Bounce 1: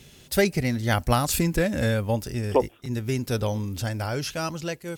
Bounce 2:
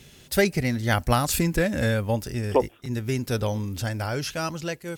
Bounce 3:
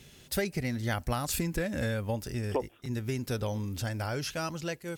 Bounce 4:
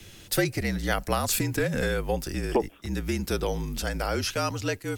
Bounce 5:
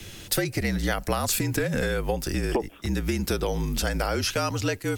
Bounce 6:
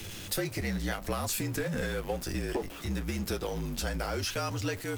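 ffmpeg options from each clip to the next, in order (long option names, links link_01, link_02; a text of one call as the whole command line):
ffmpeg -i in.wav -af "equalizer=frequency=1700:width_type=o:width=0.77:gain=2" out.wav
ffmpeg -i in.wav -af "acompressor=threshold=-24dB:ratio=3,volume=-4dB" out.wav
ffmpeg -i in.wav -filter_complex "[0:a]afreqshift=-48,acrossover=split=180|1800|4400[link_01][link_02][link_03][link_04];[link_01]asoftclip=type=tanh:threshold=-36.5dB[link_05];[link_05][link_02][link_03][link_04]amix=inputs=4:normalize=0,volume=6.5dB" out.wav
ffmpeg -i in.wav -af "acompressor=threshold=-28dB:ratio=6,volume=6dB" out.wav
ffmpeg -i in.wav -af "aeval=exprs='val(0)+0.5*0.0282*sgn(val(0))':channel_layout=same,flanger=delay=9.4:depth=2.2:regen=-43:speed=0.9:shape=sinusoidal,volume=-4.5dB" out.wav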